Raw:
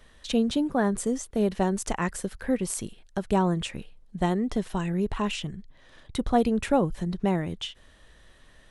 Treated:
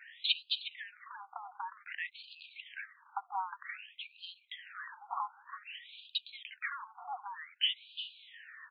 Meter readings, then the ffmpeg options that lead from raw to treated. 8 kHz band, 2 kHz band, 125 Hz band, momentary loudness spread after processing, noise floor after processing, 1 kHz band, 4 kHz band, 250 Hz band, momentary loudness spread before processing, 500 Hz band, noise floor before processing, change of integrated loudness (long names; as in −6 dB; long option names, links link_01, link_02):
below −40 dB, −3.5 dB, below −40 dB, 16 LU, −68 dBFS, −9.5 dB, +2.5 dB, below −40 dB, 11 LU, below −35 dB, −56 dBFS, −12.0 dB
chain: -filter_complex "[0:a]equalizer=frequency=200:width_type=o:width=0.33:gain=7,equalizer=frequency=630:width_type=o:width=0.33:gain=12,equalizer=frequency=5000:width_type=o:width=0.33:gain=-9,acrossover=split=4300[link_01][link_02];[link_01]acompressor=threshold=-32dB:ratio=6[link_03];[link_03][link_02]amix=inputs=2:normalize=0,asoftclip=type=tanh:threshold=-27dB,asplit=2[link_04][link_05];[link_05]adelay=360,lowpass=frequency=1200:poles=1,volume=-4dB,asplit=2[link_06][link_07];[link_07]adelay=360,lowpass=frequency=1200:poles=1,volume=0.18,asplit=2[link_08][link_09];[link_09]adelay=360,lowpass=frequency=1200:poles=1,volume=0.18[link_10];[link_04][link_06][link_08][link_10]amix=inputs=4:normalize=0,afftfilt=real='re*between(b*sr/1024,1000*pow(3500/1000,0.5+0.5*sin(2*PI*0.53*pts/sr))/1.41,1000*pow(3500/1000,0.5+0.5*sin(2*PI*0.53*pts/sr))*1.41)':imag='im*between(b*sr/1024,1000*pow(3500/1000,0.5+0.5*sin(2*PI*0.53*pts/sr))/1.41,1000*pow(3500/1000,0.5+0.5*sin(2*PI*0.53*pts/sr))*1.41)':win_size=1024:overlap=0.75,volume=10dB"